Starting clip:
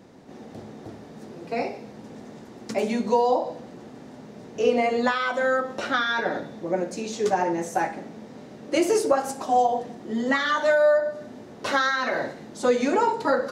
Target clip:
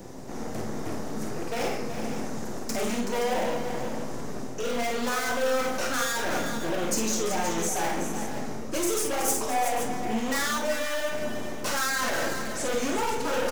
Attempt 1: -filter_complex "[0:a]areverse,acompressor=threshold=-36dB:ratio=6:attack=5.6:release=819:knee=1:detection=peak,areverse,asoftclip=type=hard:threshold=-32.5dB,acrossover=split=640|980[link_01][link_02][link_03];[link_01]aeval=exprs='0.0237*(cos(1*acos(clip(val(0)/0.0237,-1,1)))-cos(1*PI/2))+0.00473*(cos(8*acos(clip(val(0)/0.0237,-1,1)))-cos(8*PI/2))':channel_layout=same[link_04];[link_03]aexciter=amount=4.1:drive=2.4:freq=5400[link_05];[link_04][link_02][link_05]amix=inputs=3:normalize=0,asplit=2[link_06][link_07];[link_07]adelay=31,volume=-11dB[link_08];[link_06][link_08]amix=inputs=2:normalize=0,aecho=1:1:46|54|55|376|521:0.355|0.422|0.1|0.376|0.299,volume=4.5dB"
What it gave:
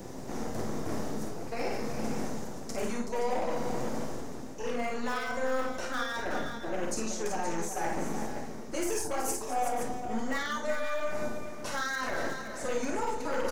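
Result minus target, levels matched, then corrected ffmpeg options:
downward compressor: peak gain reduction +10 dB
-filter_complex "[0:a]areverse,acompressor=threshold=-24dB:ratio=6:attack=5.6:release=819:knee=1:detection=peak,areverse,asoftclip=type=hard:threshold=-32.5dB,acrossover=split=640|980[link_01][link_02][link_03];[link_01]aeval=exprs='0.0237*(cos(1*acos(clip(val(0)/0.0237,-1,1)))-cos(1*PI/2))+0.00473*(cos(8*acos(clip(val(0)/0.0237,-1,1)))-cos(8*PI/2))':channel_layout=same[link_04];[link_03]aexciter=amount=4.1:drive=2.4:freq=5400[link_05];[link_04][link_02][link_05]amix=inputs=3:normalize=0,asplit=2[link_06][link_07];[link_07]adelay=31,volume=-11dB[link_08];[link_06][link_08]amix=inputs=2:normalize=0,aecho=1:1:46|54|55|376|521:0.355|0.422|0.1|0.376|0.299,volume=4.5dB"

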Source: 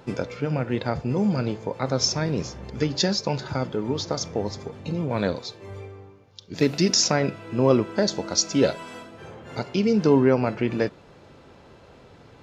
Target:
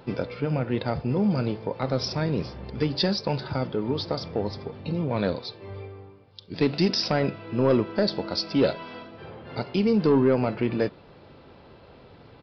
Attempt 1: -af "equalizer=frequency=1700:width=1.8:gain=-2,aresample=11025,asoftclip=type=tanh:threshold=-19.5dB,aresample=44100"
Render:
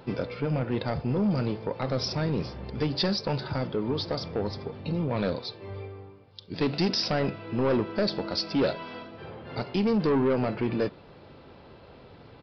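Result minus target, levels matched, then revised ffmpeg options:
soft clipping: distortion +8 dB
-af "equalizer=frequency=1700:width=1.8:gain=-2,aresample=11025,asoftclip=type=tanh:threshold=-11.5dB,aresample=44100"

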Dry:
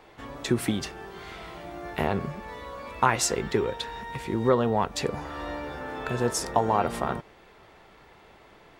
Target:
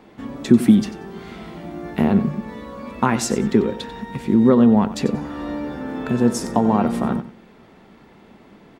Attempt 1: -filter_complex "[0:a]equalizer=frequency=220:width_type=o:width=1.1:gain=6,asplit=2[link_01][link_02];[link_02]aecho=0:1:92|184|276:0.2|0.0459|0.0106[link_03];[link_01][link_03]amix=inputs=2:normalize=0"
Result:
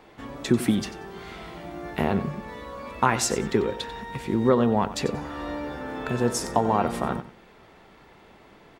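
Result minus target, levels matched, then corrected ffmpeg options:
250 Hz band −3.0 dB
-filter_complex "[0:a]equalizer=frequency=220:width_type=o:width=1.1:gain=17.5,asplit=2[link_01][link_02];[link_02]aecho=0:1:92|184|276:0.2|0.0459|0.0106[link_03];[link_01][link_03]amix=inputs=2:normalize=0"

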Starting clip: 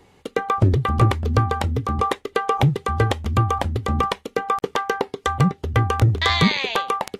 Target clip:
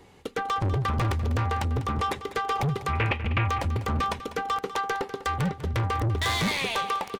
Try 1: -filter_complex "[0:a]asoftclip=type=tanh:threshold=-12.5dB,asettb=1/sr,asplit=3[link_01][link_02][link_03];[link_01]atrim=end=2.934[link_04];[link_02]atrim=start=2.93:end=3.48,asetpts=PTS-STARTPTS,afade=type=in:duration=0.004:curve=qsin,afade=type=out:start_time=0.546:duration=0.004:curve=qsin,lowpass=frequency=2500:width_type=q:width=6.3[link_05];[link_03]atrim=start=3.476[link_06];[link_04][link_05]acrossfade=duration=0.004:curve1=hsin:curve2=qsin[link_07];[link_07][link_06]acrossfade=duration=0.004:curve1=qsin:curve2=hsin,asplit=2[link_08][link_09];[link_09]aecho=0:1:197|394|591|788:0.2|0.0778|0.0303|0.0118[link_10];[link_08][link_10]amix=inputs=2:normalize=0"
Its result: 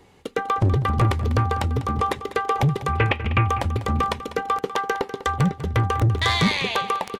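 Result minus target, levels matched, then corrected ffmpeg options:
soft clipping: distortion −9 dB
-filter_complex "[0:a]asoftclip=type=tanh:threshold=-23dB,asettb=1/sr,asplit=3[link_01][link_02][link_03];[link_01]atrim=end=2.934[link_04];[link_02]atrim=start=2.93:end=3.48,asetpts=PTS-STARTPTS,afade=type=in:duration=0.004:curve=qsin,afade=type=out:start_time=0.546:duration=0.004:curve=qsin,lowpass=frequency=2500:width_type=q:width=6.3[link_05];[link_03]atrim=start=3.476[link_06];[link_04][link_05]acrossfade=duration=0.004:curve1=hsin:curve2=qsin[link_07];[link_07][link_06]acrossfade=duration=0.004:curve1=qsin:curve2=hsin,asplit=2[link_08][link_09];[link_09]aecho=0:1:197|394|591|788:0.2|0.0778|0.0303|0.0118[link_10];[link_08][link_10]amix=inputs=2:normalize=0"

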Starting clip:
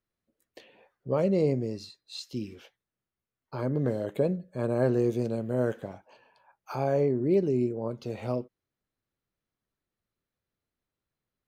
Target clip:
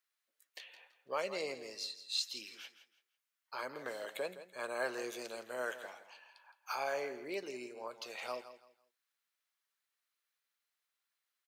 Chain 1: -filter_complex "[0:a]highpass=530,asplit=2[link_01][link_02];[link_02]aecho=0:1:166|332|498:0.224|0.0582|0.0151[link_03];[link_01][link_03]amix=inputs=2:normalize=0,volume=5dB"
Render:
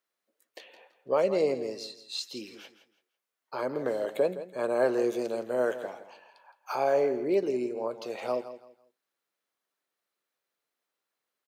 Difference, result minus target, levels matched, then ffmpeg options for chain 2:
1,000 Hz band −3.5 dB
-filter_complex "[0:a]highpass=1400,asplit=2[link_01][link_02];[link_02]aecho=0:1:166|332|498:0.224|0.0582|0.0151[link_03];[link_01][link_03]amix=inputs=2:normalize=0,volume=5dB"

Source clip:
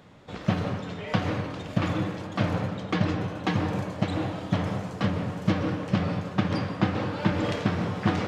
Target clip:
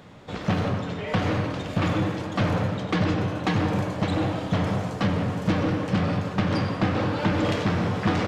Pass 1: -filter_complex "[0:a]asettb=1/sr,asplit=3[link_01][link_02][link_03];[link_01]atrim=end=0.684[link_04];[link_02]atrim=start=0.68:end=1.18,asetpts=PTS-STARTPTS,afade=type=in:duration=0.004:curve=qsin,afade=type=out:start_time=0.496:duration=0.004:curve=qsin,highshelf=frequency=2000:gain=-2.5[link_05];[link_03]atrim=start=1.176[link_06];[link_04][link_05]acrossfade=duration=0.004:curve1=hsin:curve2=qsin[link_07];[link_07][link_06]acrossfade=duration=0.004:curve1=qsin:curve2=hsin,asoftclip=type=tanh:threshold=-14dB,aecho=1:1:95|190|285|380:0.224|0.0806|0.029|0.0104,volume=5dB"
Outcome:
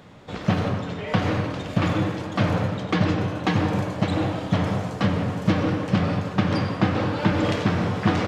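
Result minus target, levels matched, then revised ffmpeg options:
soft clipping: distortion −8 dB
-filter_complex "[0:a]asettb=1/sr,asplit=3[link_01][link_02][link_03];[link_01]atrim=end=0.684[link_04];[link_02]atrim=start=0.68:end=1.18,asetpts=PTS-STARTPTS,afade=type=in:duration=0.004:curve=qsin,afade=type=out:start_time=0.496:duration=0.004:curve=qsin,highshelf=frequency=2000:gain=-2.5[link_05];[link_03]atrim=start=1.176[link_06];[link_04][link_05]acrossfade=duration=0.004:curve1=hsin:curve2=qsin[link_07];[link_07][link_06]acrossfade=duration=0.004:curve1=qsin:curve2=hsin,asoftclip=type=tanh:threshold=-21dB,aecho=1:1:95|190|285|380:0.224|0.0806|0.029|0.0104,volume=5dB"

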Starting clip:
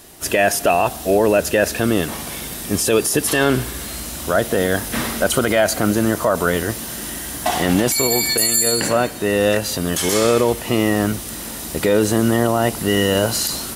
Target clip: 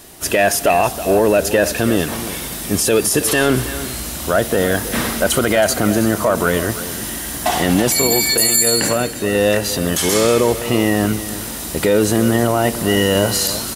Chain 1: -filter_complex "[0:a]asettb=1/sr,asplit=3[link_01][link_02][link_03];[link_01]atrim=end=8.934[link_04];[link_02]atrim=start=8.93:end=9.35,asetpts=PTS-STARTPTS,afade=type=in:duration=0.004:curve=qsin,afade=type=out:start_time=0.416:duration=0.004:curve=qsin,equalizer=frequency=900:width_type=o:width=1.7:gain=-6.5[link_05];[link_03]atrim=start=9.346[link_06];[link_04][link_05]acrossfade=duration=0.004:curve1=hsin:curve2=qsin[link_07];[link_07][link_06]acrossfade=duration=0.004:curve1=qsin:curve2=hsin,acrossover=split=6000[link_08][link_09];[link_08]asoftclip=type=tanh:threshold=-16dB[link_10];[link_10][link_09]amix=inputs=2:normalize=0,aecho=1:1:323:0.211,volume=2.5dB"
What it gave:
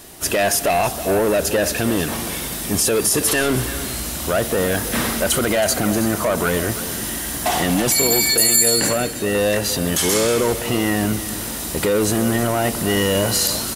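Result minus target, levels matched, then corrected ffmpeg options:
soft clipping: distortion +12 dB
-filter_complex "[0:a]asettb=1/sr,asplit=3[link_01][link_02][link_03];[link_01]atrim=end=8.934[link_04];[link_02]atrim=start=8.93:end=9.35,asetpts=PTS-STARTPTS,afade=type=in:duration=0.004:curve=qsin,afade=type=out:start_time=0.416:duration=0.004:curve=qsin,equalizer=frequency=900:width_type=o:width=1.7:gain=-6.5[link_05];[link_03]atrim=start=9.346[link_06];[link_04][link_05]acrossfade=duration=0.004:curve1=hsin:curve2=qsin[link_07];[link_07][link_06]acrossfade=duration=0.004:curve1=qsin:curve2=hsin,acrossover=split=6000[link_08][link_09];[link_08]asoftclip=type=tanh:threshold=-6.5dB[link_10];[link_10][link_09]amix=inputs=2:normalize=0,aecho=1:1:323:0.211,volume=2.5dB"

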